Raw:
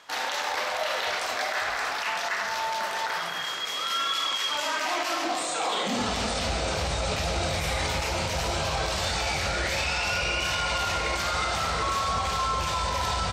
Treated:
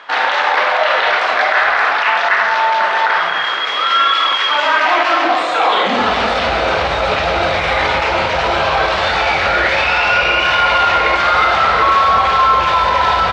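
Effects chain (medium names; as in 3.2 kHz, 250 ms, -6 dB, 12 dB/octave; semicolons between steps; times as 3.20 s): FFT filter 140 Hz 0 dB, 380 Hz +9 dB, 1.5 kHz +14 dB, 3.6 kHz +7 dB, 14 kHz -27 dB; trim +3.5 dB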